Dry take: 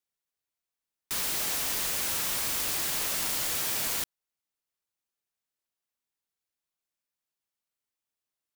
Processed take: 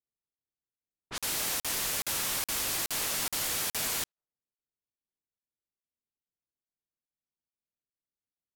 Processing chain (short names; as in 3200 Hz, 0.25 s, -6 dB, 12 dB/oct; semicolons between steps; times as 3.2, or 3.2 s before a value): low-pass opened by the level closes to 370 Hz, open at -26.5 dBFS; crackling interface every 0.42 s, samples 2048, zero, from 0.34